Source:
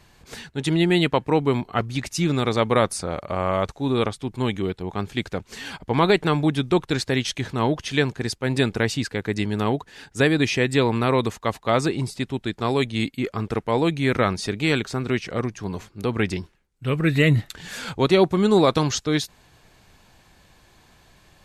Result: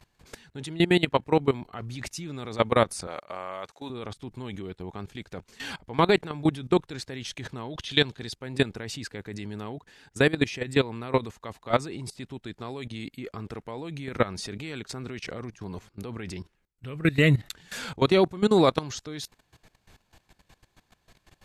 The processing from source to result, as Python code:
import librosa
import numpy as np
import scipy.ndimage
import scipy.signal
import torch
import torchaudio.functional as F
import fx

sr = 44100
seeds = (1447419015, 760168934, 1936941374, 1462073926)

y = fx.highpass(x, sr, hz=790.0, slope=6, at=(3.07, 3.9))
y = fx.peak_eq(y, sr, hz=3600.0, db=11.0, octaves=0.6, at=(7.7, 8.34))
y = fx.level_steps(y, sr, step_db=18)